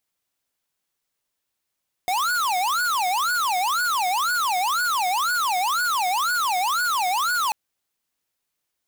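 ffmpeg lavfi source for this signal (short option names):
-f lavfi -i "aevalsrc='0.075*(2*lt(mod((1094*t-376/(2*PI*2)*sin(2*PI*2*t)),1),0.5)-1)':d=5.44:s=44100"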